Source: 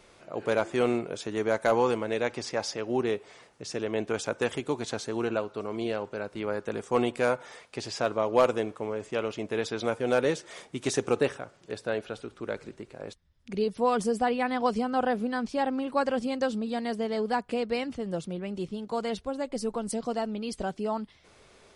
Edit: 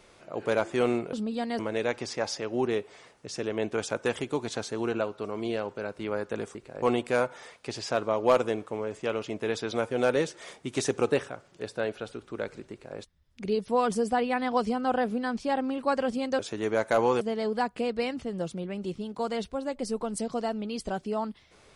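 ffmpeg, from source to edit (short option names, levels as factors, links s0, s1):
-filter_complex "[0:a]asplit=7[s0][s1][s2][s3][s4][s5][s6];[s0]atrim=end=1.132[s7];[s1]atrim=start=16.478:end=16.942[s8];[s2]atrim=start=1.948:end=6.912[s9];[s3]atrim=start=12.798:end=13.072[s10];[s4]atrim=start=6.908:end=16.482[s11];[s5]atrim=start=1.128:end=1.952[s12];[s6]atrim=start=16.938[s13];[s7][s8]acrossfade=d=0.004:c1=hsin:c2=hsin[s14];[s14][s9]acrossfade=d=0.004:c1=hsin:c2=hsin[s15];[s15][s10]acrossfade=d=0.004:c1=hsin:c2=hsin[s16];[s16][s11]acrossfade=d=0.004:c1=hsin:c2=hsin[s17];[s17][s12]acrossfade=d=0.004:c1=hsin:c2=hsin[s18];[s18][s13]acrossfade=d=0.004:c1=hsin:c2=hsin"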